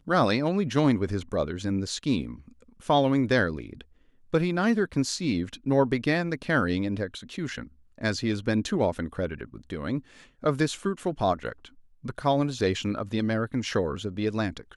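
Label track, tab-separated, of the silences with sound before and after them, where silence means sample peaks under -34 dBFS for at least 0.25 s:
2.340000	2.890000	silence
3.810000	4.340000	silence
7.640000	8.010000	silence
9.990000	10.440000	silence
11.650000	12.050000	silence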